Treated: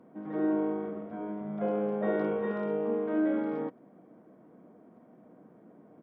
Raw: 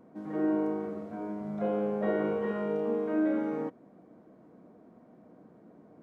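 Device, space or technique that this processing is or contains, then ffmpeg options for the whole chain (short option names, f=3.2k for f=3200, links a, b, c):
Bluetooth headset: -af "highpass=110,aresample=8000,aresample=44100" -ar 44100 -c:a sbc -b:a 64k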